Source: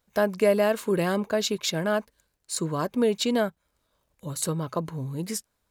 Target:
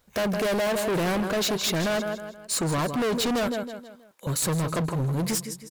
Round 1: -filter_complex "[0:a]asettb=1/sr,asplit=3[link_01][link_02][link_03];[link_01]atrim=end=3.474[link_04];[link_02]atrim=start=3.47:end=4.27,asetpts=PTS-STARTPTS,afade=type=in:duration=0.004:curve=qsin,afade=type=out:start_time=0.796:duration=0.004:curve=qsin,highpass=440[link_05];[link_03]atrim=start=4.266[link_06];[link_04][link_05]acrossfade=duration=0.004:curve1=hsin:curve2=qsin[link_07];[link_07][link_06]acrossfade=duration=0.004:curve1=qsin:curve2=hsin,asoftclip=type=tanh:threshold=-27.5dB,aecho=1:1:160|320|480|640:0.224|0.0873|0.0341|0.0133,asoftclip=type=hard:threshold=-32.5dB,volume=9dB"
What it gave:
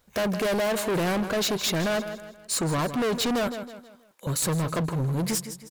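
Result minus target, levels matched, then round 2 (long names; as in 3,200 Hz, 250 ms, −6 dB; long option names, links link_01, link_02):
soft clipping: distortion +8 dB
-filter_complex "[0:a]asettb=1/sr,asplit=3[link_01][link_02][link_03];[link_01]atrim=end=3.474[link_04];[link_02]atrim=start=3.47:end=4.27,asetpts=PTS-STARTPTS,afade=type=in:duration=0.004:curve=qsin,afade=type=out:start_time=0.796:duration=0.004:curve=qsin,highpass=440[link_05];[link_03]atrim=start=4.266[link_06];[link_04][link_05]acrossfade=duration=0.004:curve1=hsin:curve2=qsin[link_07];[link_07][link_06]acrossfade=duration=0.004:curve1=qsin:curve2=hsin,asoftclip=type=tanh:threshold=-18dB,aecho=1:1:160|320|480|640:0.224|0.0873|0.0341|0.0133,asoftclip=type=hard:threshold=-32.5dB,volume=9dB"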